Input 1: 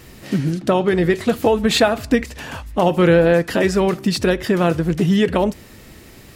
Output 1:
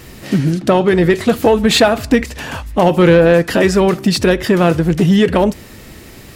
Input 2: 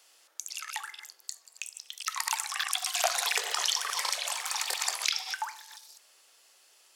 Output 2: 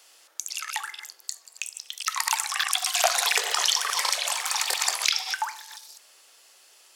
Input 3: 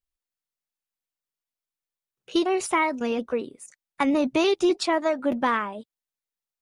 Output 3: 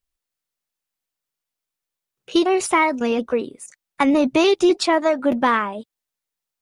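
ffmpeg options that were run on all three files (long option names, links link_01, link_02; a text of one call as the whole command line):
ffmpeg -i in.wav -af "acontrast=44" out.wav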